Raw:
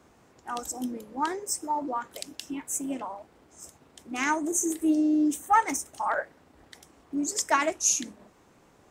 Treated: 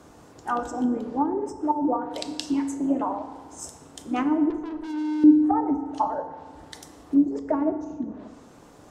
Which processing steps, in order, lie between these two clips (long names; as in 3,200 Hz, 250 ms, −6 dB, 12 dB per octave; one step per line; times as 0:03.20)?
treble cut that deepens with the level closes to 380 Hz, closed at −25 dBFS
0:04.50–0:05.24: tube saturation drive 42 dB, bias 0.65
parametric band 2,200 Hz −6 dB 0.82 octaves
feedback delay network reverb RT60 1.5 s, low-frequency decay 0.95×, high-frequency decay 0.6×, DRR 7.5 dB
level +8.5 dB